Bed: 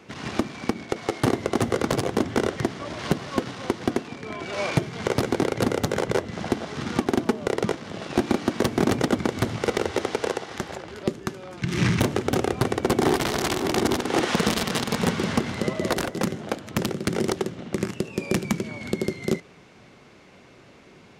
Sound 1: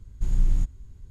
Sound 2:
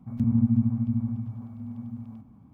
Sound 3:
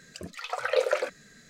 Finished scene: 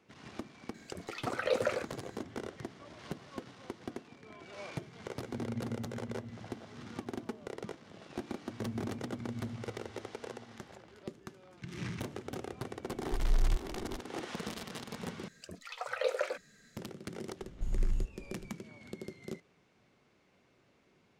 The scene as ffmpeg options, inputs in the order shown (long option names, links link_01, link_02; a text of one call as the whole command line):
ffmpeg -i bed.wav -i cue0.wav -i cue1.wav -i cue2.wav -filter_complex "[3:a]asplit=2[link_01][link_02];[2:a]asplit=2[link_03][link_04];[1:a]asplit=2[link_05][link_06];[0:a]volume=-18dB[link_07];[link_03]tiltshelf=frequency=970:gain=-4.5[link_08];[link_04]asplit=2[link_09][link_10];[link_10]adelay=5.7,afreqshift=-0.86[link_11];[link_09][link_11]amix=inputs=2:normalize=1[link_12];[link_05]asubboost=boost=11.5:cutoff=170[link_13];[link_07]asplit=2[link_14][link_15];[link_14]atrim=end=15.284[link_16];[link_02]atrim=end=1.49,asetpts=PTS-STARTPTS,volume=-7.5dB[link_17];[link_15]atrim=start=16.766[link_18];[link_01]atrim=end=1.49,asetpts=PTS-STARTPTS,volume=-6dB,afade=type=in:duration=0.004:curve=hsin,afade=type=out:start_time=1.486:duration=0.004:curve=hsin,adelay=740[link_19];[link_08]atrim=end=2.53,asetpts=PTS-STARTPTS,volume=-13dB,afade=type=in:duration=0.004:curve=hsin,afade=type=out:start_time=2.526:duration=0.004:curve=hsin,adelay=5140[link_20];[link_12]atrim=end=2.53,asetpts=PTS-STARTPTS,volume=-13dB,afade=type=in:duration=0.004:curve=hsin,afade=type=out:start_time=2.526:duration=0.004:curve=hsin,adelay=8400[link_21];[link_13]atrim=end=1.1,asetpts=PTS-STARTPTS,volume=-15dB,afade=type=in:duration=0.004:curve=hsin,afade=type=out:start_time=1.096:duration=0.004:curve=hsin,adelay=12910[link_22];[link_06]atrim=end=1.1,asetpts=PTS-STARTPTS,volume=-9.5dB,afade=type=in:duration=0.004:curve=hsin,afade=type=out:start_time=1.096:duration=0.004:curve=hsin,adelay=17400[link_23];[link_16][link_17]acrossfade=duration=0.004:curve1=hsin:curve2=hsin[link_24];[link_24][link_18]acrossfade=duration=0.004:curve1=hsin:curve2=hsin[link_25];[link_25][link_19][link_20][link_21][link_22][link_23]amix=inputs=6:normalize=0" out.wav